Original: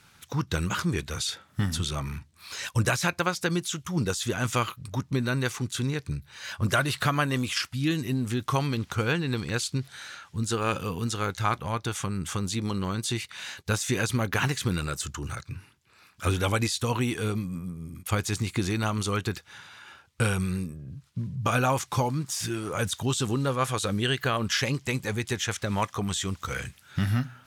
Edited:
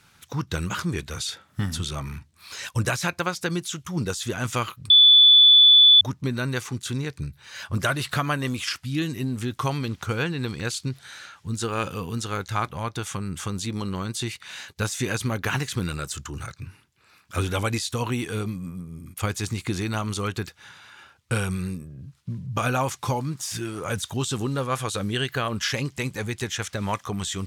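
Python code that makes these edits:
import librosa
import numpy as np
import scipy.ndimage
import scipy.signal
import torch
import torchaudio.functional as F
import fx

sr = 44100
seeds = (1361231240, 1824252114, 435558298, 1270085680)

y = fx.edit(x, sr, fx.insert_tone(at_s=4.9, length_s=1.11, hz=3470.0, db=-9.5), tone=tone)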